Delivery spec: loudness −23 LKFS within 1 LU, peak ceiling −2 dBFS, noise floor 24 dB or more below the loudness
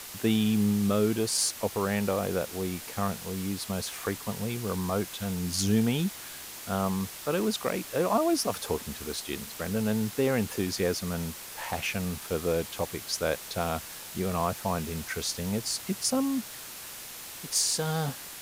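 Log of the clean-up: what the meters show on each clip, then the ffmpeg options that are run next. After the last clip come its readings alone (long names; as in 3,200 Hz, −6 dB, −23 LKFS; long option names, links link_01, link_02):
background noise floor −43 dBFS; target noise floor −54 dBFS; integrated loudness −30.0 LKFS; sample peak −13.5 dBFS; target loudness −23.0 LKFS
→ -af "afftdn=noise_reduction=11:noise_floor=-43"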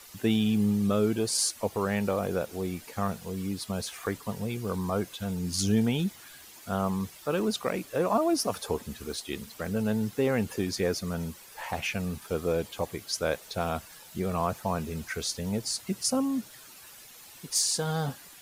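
background noise floor −50 dBFS; target noise floor −54 dBFS
→ -af "afftdn=noise_reduction=6:noise_floor=-50"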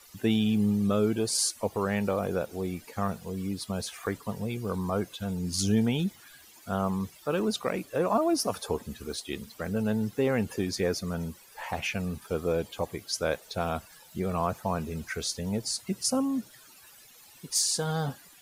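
background noise floor −54 dBFS; integrated loudness −30.0 LKFS; sample peak −14.0 dBFS; target loudness −23.0 LKFS
→ -af "volume=7dB"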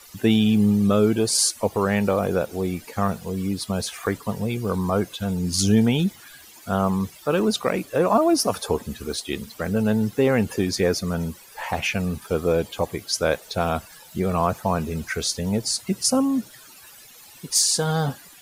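integrated loudness −23.0 LKFS; sample peak −7.0 dBFS; background noise floor −47 dBFS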